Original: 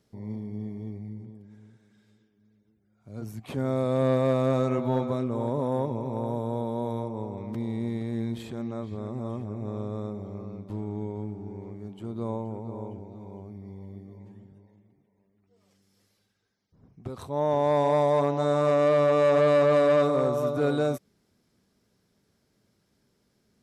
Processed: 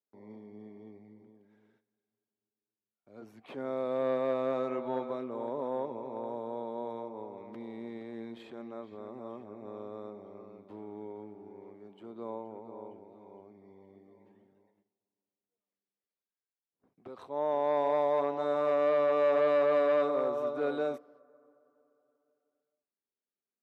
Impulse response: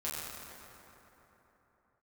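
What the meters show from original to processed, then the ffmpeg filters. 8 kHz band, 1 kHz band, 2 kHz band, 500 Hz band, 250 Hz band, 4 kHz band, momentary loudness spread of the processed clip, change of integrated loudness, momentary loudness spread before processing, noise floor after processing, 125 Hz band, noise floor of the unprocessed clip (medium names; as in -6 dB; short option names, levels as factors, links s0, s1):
no reading, -5.0 dB, -5.5 dB, -5.5 dB, -10.5 dB, -9.0 dB, 23 LU, -4.5 dB, 20 LU, under -85 dBFS, -23.0 dB, -71 dBFS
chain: -filter_complex "[0:a]agate=range=0.0794:threshold=0.00141:ratio=16:detection=peak,acrossover=split=270 3900:gain=0.0708 1 0.141[s0][s1][s2];[s0][s1][s2]amix=inputs=3:normalize=0,asplit=2[s3][s4];[1:a]atrim=start_sample=2205,lowpass=1800[s5];[s4][s5]afir=irnorm=-1:irlink=0,volume=0.0473[s6];[s3][s6]amix=inputs=2:normalize=0,volume=0.562"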